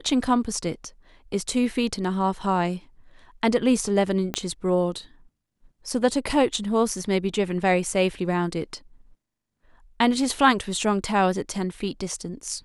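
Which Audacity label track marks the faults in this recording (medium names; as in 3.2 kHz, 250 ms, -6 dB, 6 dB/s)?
4.340000	4.340000	pop -11 dBFS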